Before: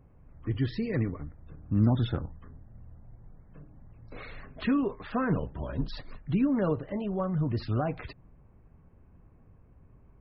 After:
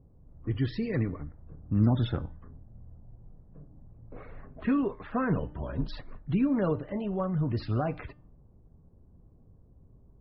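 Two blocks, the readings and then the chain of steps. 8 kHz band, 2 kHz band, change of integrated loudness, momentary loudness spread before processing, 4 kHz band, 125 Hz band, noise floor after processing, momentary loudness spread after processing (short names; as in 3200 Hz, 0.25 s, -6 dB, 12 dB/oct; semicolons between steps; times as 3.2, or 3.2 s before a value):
n/a, -1.0 dB, 0.0 dB, 18 LU, -1.5 dB, 0.0 dB, -58 dBFS, 18 LU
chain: de-hum 299.5 Hz, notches 28; low-pass opened by the level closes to 550 Hz, open at -25 dBFS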